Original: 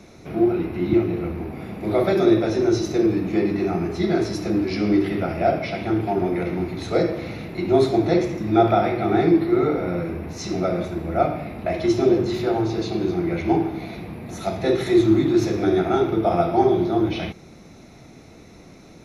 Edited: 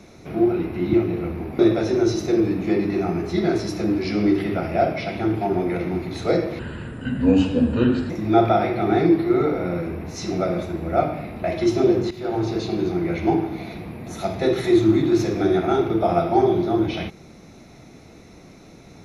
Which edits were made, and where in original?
0:01.59–0:02.25: remove
0:07.25–0:08.32: play speed 71%
0:12.33–0:12.66: fade in, from −15.5 dB

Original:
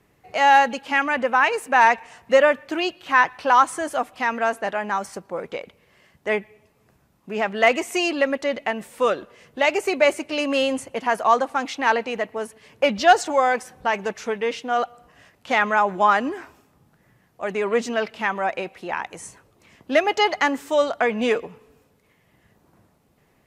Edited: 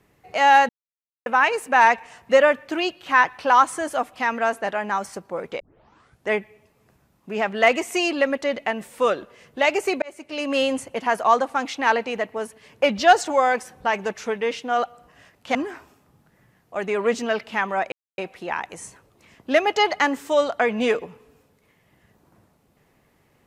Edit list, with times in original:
0:00.69–0:01.26: silence
0:05.60: tape start 0.69 s
0:10.02–0:10.60: fade in
0:15.55–0:16.22: remove
0:18.59: splice in silence 0.26 s

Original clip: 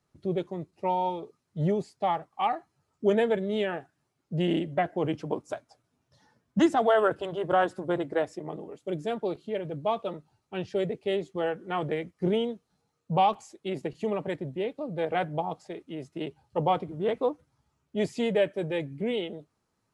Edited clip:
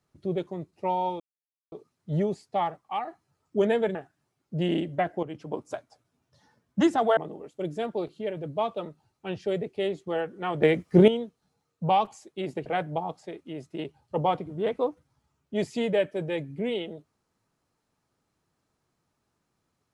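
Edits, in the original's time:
0:01.20: splice in silence 0.52 s
0:02.26–0:02.55: fade out, to −7 dB
0:03.43–0:03.74: remove
0:05.02–0:05.46: fade in, from −13.5 dB
0:06.96–0:08.45: remove
0:11.90–0:12.36: clip gain +10 dB
0:13.94–0:15.08: remove

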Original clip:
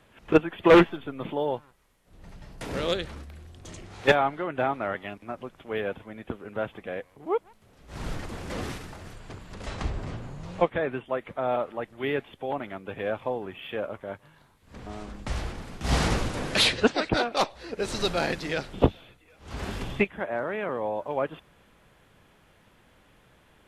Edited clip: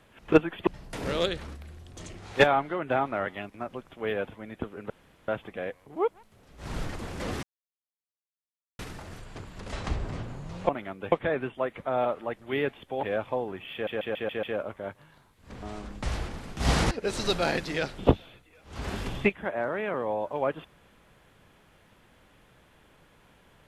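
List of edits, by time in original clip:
0:00.67–0:02.35: remove
0:06.58: splice in room tone 0.38 s
0:08.73: splice in silence 1.36 s
0:12.54–0:12.97: move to 0:10.63
0:13.67: stutter 0.14 s, 6 plays
0:16.15–0:17.66: remove

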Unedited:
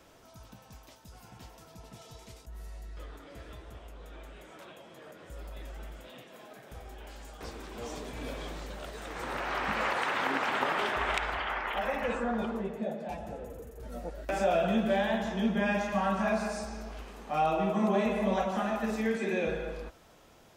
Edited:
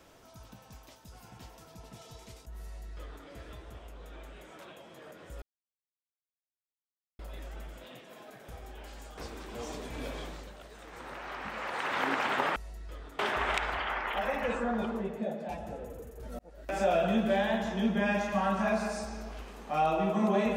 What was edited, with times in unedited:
0:02.64–0:03.27: duplicate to 0:10.79
0:05.42: splice in silence 1.77 s
0:08.39–0:10.26: duck −8 dB, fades 0.41 s
0:13.99–0:14.43: fade in

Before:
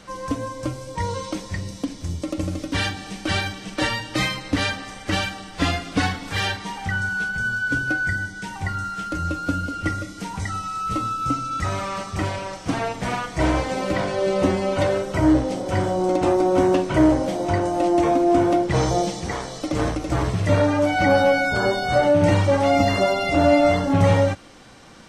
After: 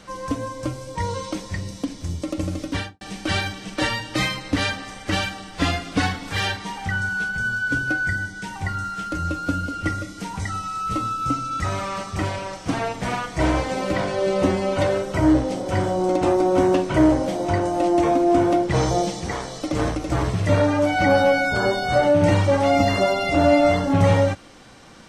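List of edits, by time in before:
0:02.68–0:03.01: fade out and dull

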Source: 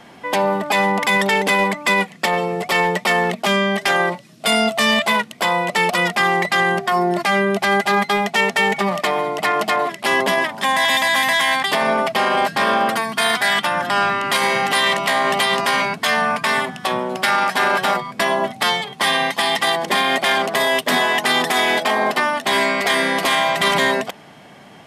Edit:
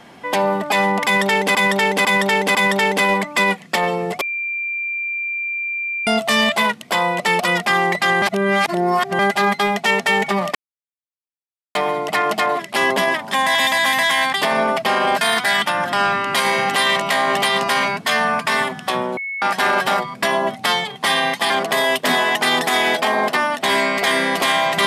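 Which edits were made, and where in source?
0:01.05–0:01.55: repeat, 4 plays
0:02.71–0:04.57: beep over 2,370 Hz −21 dBFS
0:06.72–0:07.69: reverse
0:09.05: splice in silence 1.20 s
0:12.51–0:13.18: remove
0:17.14–0:17.39: beep over 2,200 Hz −23.5 dBFS
0:19.47–0:20.33: remove

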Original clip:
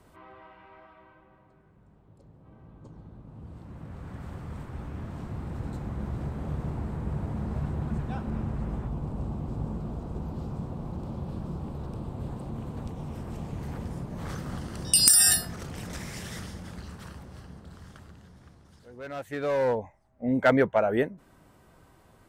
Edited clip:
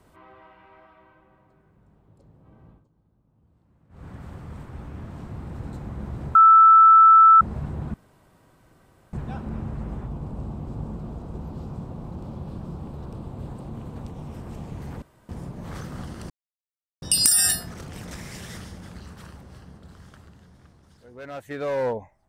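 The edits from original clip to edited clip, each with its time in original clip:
0:02.70–0:04.04: duck −18.5 dB, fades 0.15 s
0:06.35–0:07.41: beep over 1,320 Hz −8.5 dBFS
0:07.94: splice in room tone 1.19 s
0:13.83: splice in room tone 0.27 s
0:14.84: splice in silence 0.72 s

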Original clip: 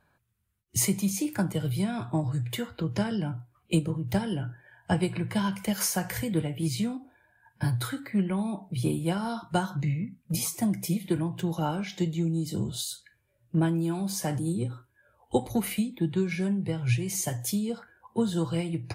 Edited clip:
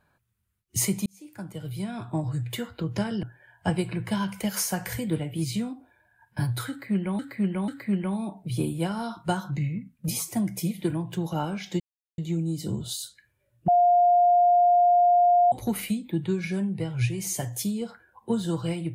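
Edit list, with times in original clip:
0:01.06–0:02.29: fade in
0:03.23–0:04.47: remove
0:07.94–0:08.43: repeat, 3 plays
0:12.06: splice in silence 0.38 s
0:13.56–0:15.40: beep over 706 Hz −15.5 dBFS

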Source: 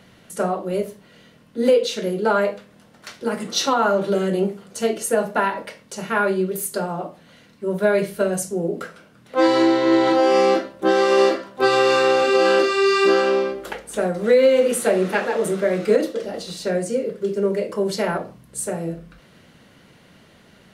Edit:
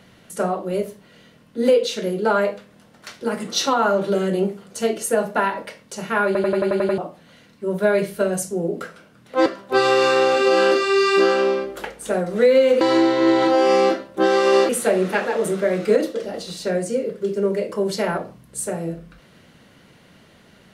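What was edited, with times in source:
0:06.26: stutter in place 0.09 s, 8 plays
0:09.46–0:11.34: move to 0:14.69

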